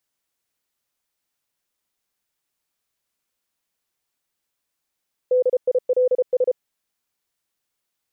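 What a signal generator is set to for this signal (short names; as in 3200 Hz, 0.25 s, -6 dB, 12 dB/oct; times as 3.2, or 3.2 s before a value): Morse "DILS" 33 wpm 504 Hz -14 dBFS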